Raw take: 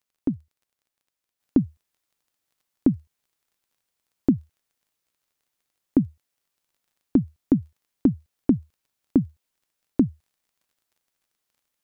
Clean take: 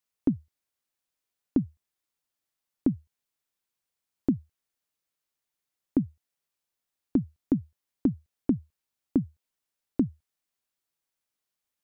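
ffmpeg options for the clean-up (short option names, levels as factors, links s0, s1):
-af "adeclick=t=4,asetnsamples=n=441:p=0,asendcmd='1.4 volume volume -5.5dB',volume=1"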